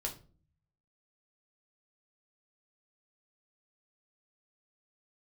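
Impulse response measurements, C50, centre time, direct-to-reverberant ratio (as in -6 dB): 11.5 dB, 15 ms, 0.0 dB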